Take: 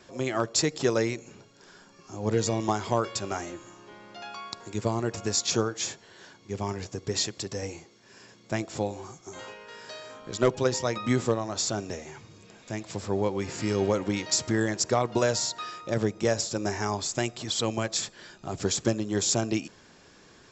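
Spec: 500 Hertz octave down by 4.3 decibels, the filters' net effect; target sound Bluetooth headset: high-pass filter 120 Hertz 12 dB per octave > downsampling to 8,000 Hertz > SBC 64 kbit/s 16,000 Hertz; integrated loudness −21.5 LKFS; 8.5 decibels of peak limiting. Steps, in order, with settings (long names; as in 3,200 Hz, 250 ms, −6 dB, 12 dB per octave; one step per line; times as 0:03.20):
parametric band 500 Hz −5.5 dB
brickwall limiter −20.5 dBFS
high-pass filter 120 Hz 12 dB per octave
downsampling to 8,000 Hz
level +14.5 dB
SBC 64 kbit/s 16,000 Hz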